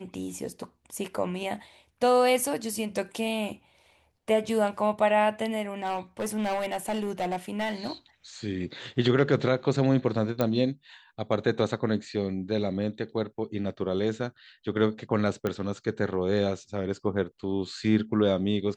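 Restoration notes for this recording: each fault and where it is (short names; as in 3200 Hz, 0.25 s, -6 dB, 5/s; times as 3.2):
5.82–7.92 clipped -25 dBFS
10.41 pop -13 dBFS
15.47 pop -16 dBFS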